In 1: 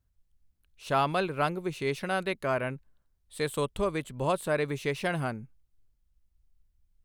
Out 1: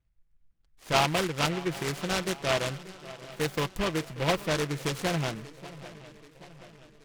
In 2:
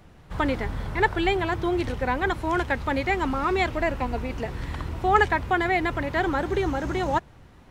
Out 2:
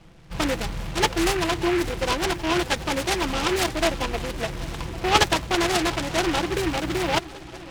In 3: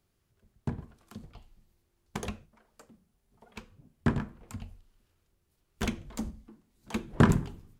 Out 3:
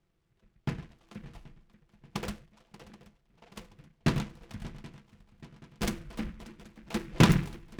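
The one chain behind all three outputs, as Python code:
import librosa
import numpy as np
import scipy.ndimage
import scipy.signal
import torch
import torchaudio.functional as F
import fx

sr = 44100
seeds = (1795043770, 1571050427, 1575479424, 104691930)

y = x + 0.49 * np.pad(x, (int(6.0 * sr / 1000.0), 0))[:len(x)]
y = fx.echo_swing(y, sr, ms=779, ratio=3, feedback_pct=52, wet_db=-18)
y = fx.env_lowpass(y, sr, base_hz=2300.0, full_db=-19.5)
y = fx.noise_mod_delay(y, sr, seeds[0], noise_hz=1700.0, depth_ms=0.14)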